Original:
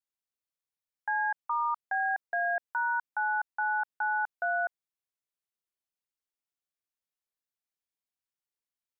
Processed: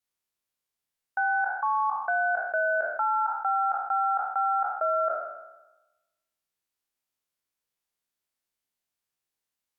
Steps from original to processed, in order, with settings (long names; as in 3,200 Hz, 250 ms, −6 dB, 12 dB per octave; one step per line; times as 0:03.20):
peak hold with a decay on every bin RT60 0.97 s
wrong playback speed 48 kHz file played as 44.1 kHz
level +3.5 dB